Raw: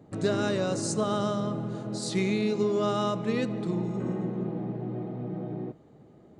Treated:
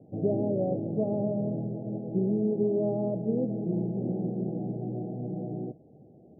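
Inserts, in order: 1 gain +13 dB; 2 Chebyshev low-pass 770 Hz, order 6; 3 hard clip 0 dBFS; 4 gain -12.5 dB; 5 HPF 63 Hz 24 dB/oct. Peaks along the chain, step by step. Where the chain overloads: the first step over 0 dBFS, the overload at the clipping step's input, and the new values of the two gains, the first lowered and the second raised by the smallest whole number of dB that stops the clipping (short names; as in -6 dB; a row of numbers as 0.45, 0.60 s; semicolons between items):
-1.5, -3.0, -3.0, -15.5, -15.0 dBFS; no overload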